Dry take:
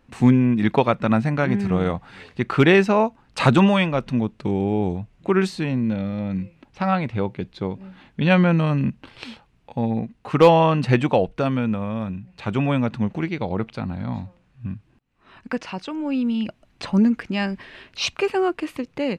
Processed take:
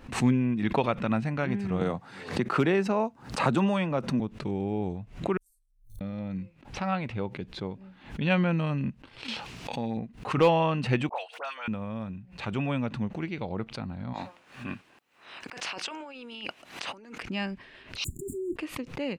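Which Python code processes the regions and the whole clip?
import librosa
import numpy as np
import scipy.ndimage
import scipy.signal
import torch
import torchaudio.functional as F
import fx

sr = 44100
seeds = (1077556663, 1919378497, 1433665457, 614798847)

y = fx.chain(x, sr, fx.highpass(hz=120.0, slope=12),
    fx.peak_eq(hz=2800.0, db=-7.5, octaves=1.2),
    fx.band_squash(depth_pct=70), at=(1.81, 4.2))
y = fx.chain(y, sr, fx.cheby2_bandstop(low_hz=160.0, high_hz=2700.0, order=4, stop_db=80),
    fx.sustainer(db_per_s=77.0), at=(5.37, 6.01))
y = fx.chain(y, sr, fx.highpass(hz=190.0, slope=6),
    fx.peak_eq(hz=5300.0, db=8.5, octaves=1.6),
    fx.env_flatten(amount_pct=70), at=(9.28, 9.97))
y = fx.chain(y, sr, fx.highpass(hz=760.0, slope=24),
    fx.dispersion(late='highs', ms=72.0, hz=1700.0),
    fx.band_squash(depth_pct=70), at=(11.09, 11.68))
y = fx.spec_clip(y, sr, under_db=14, at=(14.13, 17.21), fade=0.02)
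y = fx.highpass(y, sr, hz=580.0, slope=6, at=(14.13, 17.21), fade=0.02)
y = fx.over_compress(y, sr, threshold_db=-38.0, ratio=-1.0, at=(14.13, 17.21), fade=0.02)
y = fx.chain(y, sr, fx.over_compress(threshold_db=-31.0, ratio=-1.0),
    fx.leveller(passes=3),
    fx.brickwall_bandstop(low_hz=400.0, high_hz=6800.0), at=(18.04, 18.56))
y = fx.dynamic_eq(y, sr, hz=2700.0, q=3.3, threshold_db=-42.0, ratio=4.0, max_db=4)
y = fx.pre_swell(y, sr, db_per_s=130.0)
y = F.gain(torch.from_numpy(y), -8.5).numpy()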